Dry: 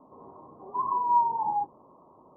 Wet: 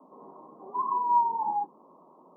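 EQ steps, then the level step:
Butterworth high-pass 160 Hz 72 dB per octave
dynamic equaliser 610 Hz, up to −7 dB, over −49 dBFS, Q 4
0.0 dB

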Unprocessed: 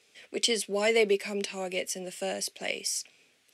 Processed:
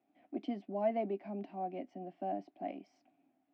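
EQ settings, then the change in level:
pair of resonant band-passes 460 Hz, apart 1.3 octaves
high-frequency loss of the air 230 metres
low-shelf EQ 480 Hz +10 dB
+1.5 dB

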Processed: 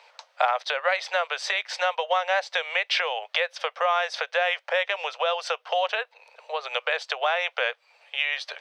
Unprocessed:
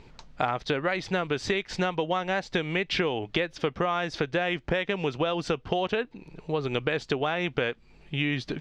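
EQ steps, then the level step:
Butterworth high-pass 520 Hz 72 dB per octave
notch filter 7,000 Hz, Q 10
+5.0 dB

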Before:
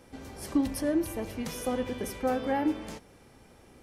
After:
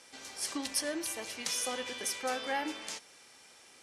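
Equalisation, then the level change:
meter weighting curve ITU-R 468
−2.0 dB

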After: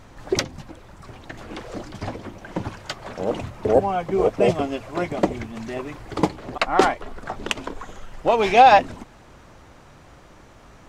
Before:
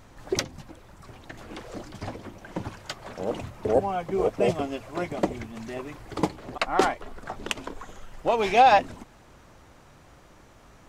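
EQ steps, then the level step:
high-shelf EQ 9,900 Hz −8 dB
+5.0 dB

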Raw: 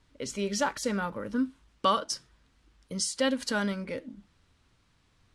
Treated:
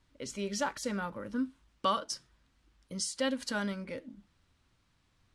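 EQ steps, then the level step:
notch filter 440 Hz, Q 12
−4.5 dB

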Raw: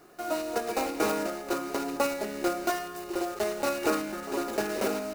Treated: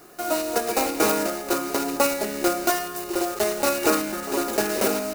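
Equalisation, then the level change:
high-shelf EQ 5,700 Hz +8.5 dB
+5.5 dB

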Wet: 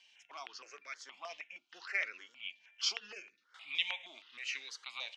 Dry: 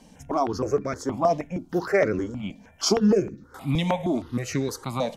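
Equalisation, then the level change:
four-pole ladder band-pass 3,100 Hz, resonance 55%
high-frequency loss of the air 71 metres
+8.5 dB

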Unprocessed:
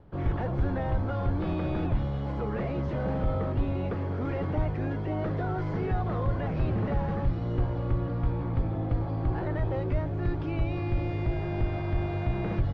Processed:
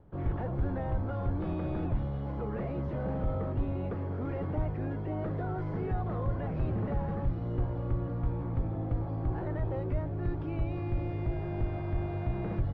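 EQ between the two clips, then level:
high-shelf EQ 2,400 Hz −10.5 dB
−3.5 dB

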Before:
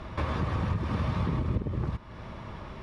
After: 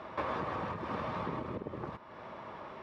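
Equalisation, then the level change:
high-pass filter 630 Hz 12 dB per octave
spectral tilt −4 dB per octave
+1.0 dB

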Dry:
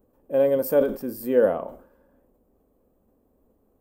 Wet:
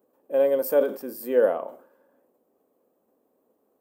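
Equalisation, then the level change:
high-pass filter 340 Hz 12 dB per octave
0.0 dB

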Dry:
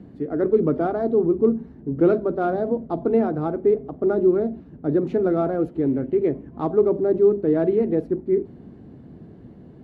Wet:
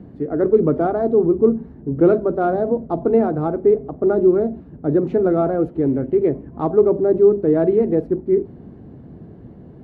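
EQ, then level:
parametric band 250 Hz −3.5 dB 1.4 octaves
high-shelf EQ 2,000 Hz −10.5 dB
+6.0 dB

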